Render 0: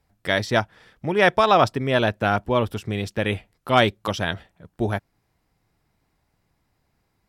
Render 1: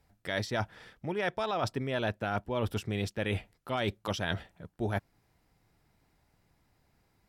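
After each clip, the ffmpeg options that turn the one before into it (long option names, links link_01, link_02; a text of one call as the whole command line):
ffmpeg -i in.wav -af "bandreject=frequency=1100:width=21,alimiter=limit=-11dB:level=0:latency=1:release=58,areverse,acompressor=threshold=-29dB:ratio=6,areverse" out.wav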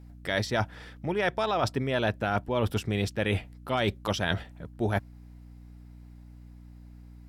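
ffmpeg -i in.wav -af "aeval=exprs='val(0)+0.00282*(sin(2*PI*60*n/s)+sin(2*PI*2*60*n/s)/2+sin(2*PI*3*60*n/s)/3+sin(2*PI*4*60*n/s)/4+sin(2*PI*5*60*n/s)/5)':channel_layout=same,volume=4.5dB" out.wav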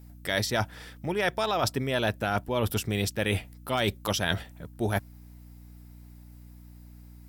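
ffmpeg -i in.wav -af "aemphasis=mode=production:type=50fm" out.wav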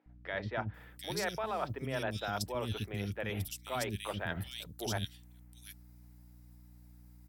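ffmpeg -i in.wav -filter_complex "[0:a]acrossover=split=330|2800[link_01][link_02][link_03];[link_01]adelay=60[link_04];[link_03]adelay=740[link_05];[link_04][link_02][link_05]amix=inputs=3:normalize=0,volume=-7.5dB" out.wav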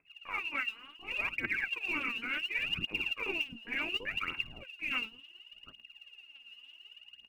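ffmpeg -i in.wav -af "lowpass=frequency=2500:width_type=q:width=0.5098,lowpass=frequency=2500:width_type=q:width=0.6013,lowpass=frequency=2500:width_type=q:width=0.9,lowpass=frequency=2500:width_type=q:width=2.563,afreqshift=-2900,lowshelf=frequency=410:width_type=q:width=1.5:gain=12,aphaser=in_gain=1:out_gain=1:delay=4.6:decay=0.79:speed=0.69:type=triangular,volume=-2.5dB" out.wav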